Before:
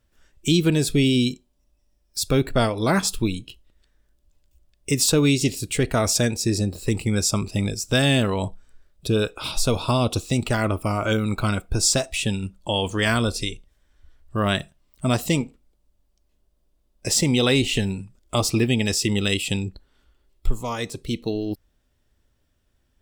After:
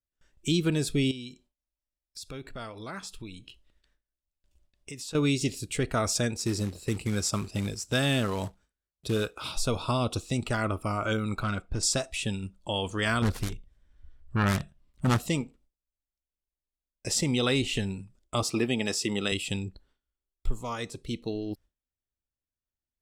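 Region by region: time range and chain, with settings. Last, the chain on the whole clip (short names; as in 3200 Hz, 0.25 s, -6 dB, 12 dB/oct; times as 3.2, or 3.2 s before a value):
1.11–5.15 bell 2300 Hz +5 dB 3 oct + compressor 2.5:1, threshold -37 dBFS
6.38–9.55 HPF 42 Hz + short-mantissa float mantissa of 2-bit
11.43–11.83 hard clip -18 dBFS + air absorption 70 m
13.22–15.2 self-modulated delay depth 0.7 ms + tone controls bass +8 dB, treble -4 dB
18.43–19.32 HPF 160 Hz + dynamic EQ 790 Hz, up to +5 dB, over -36 dBFS, Q 0.78
whole clip: gate with hold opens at -48 dBFS; LPF 12000 Hz 12 dB/oct; dynamic EQ 1300 Hz, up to +5 dB, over -44 dBFS, Q 3.4; gain -7 dB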